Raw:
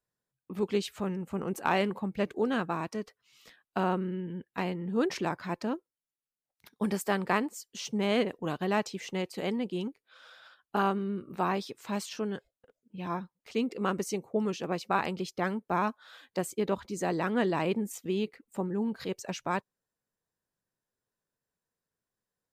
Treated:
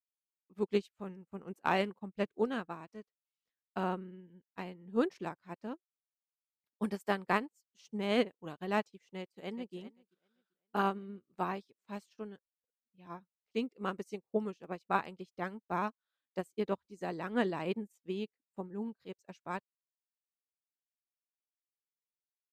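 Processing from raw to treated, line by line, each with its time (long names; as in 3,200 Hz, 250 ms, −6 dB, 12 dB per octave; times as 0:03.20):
0:09.18–0:09.75: delay throw 390 ms, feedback 55%, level −11 dB
whole clip: expander for the loud parts 2.5 to 1, over −49 dBFS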